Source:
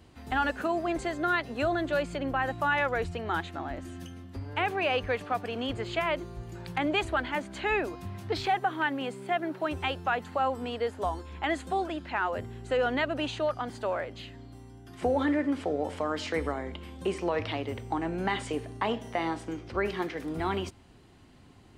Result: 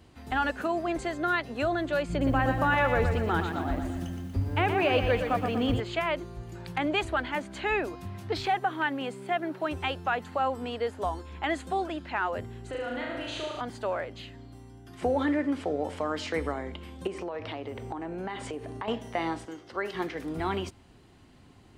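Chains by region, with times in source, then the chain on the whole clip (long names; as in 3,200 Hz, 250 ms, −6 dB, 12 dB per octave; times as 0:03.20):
0:02.09–0:05.80: low-shelf EQ 330 Hz +11 dB + feedback echo at a low word length 119 ms, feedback 55%, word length 9 bits, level −7 dB
0:12.69–0:13.61: downward compressor 5 to 1, threshold −34 dBFS + flutter between parallel walls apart 6.4 metres, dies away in 1.1 s
0:17.07–0:18.88: parametric band 580 Hz +6.5 dB 3 octaves + downward compressor 4 to 1, threshold −34 dBFS
0:19.45–0:19.95: high-pass filter 520 Hz 6 dB per octave + notch filter 2,400 Hz, Q 5.4
whole clip: no processing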